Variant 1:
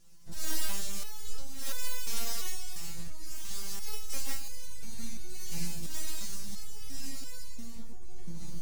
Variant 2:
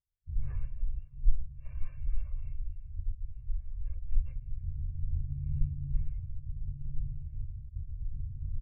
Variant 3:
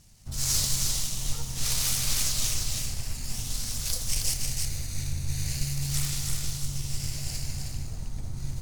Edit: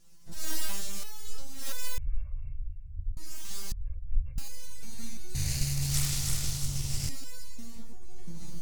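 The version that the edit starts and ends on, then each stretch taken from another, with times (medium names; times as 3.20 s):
1
1.98–3.17 s: from 2
3.72–4.38 s: from 2
5.35–7.09 s: from 3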